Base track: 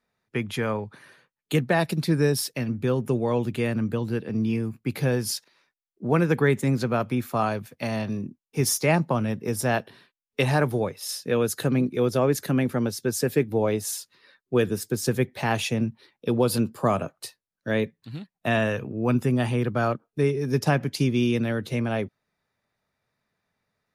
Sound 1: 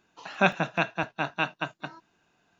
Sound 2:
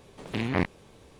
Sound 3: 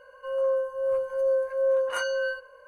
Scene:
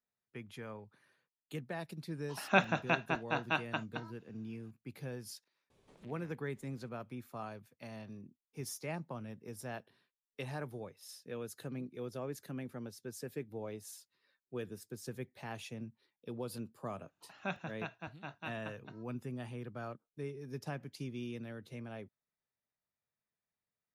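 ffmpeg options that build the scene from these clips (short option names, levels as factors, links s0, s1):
-filter_complex "[1:a]asplit=2[s0][s1];[0:a]volume=0.106[s2];[2:a]acompressor=threshold=0.0178:ratio=6:attack=0.13:release=445:knee=1:detection=peak[s3];[s1]equalizer=f=100:w=1.5:g=13.5[s4];[s0]atrim=end=2.59,asetpts=PTS-STARTPTS,volume=0.531,afade=t=in:d=0.004:c=hsin,afade=t=out:st=2.586:d=0.004:c=hsin,adelay=2120[s5];[s3]atrim=end=1.19,asetpts=PTS-STARTPTS,volume=0.141,afade=t=in:d=0.004:c=hsin,afade=t=out:st=1.186:d=0.004:c=hsin,adelay=5700[s6];[s4]atrim=end=2.59,asetpts=PTS-STARTPTS,volume=0.133,afade=t=in:d=0.004:c=hsin,afade=t=out:st=2.586:d=0.004:c=hsin,adelay=17040[s7];[s2][s5][s6][s7]amix=inputs=4:normalize=0"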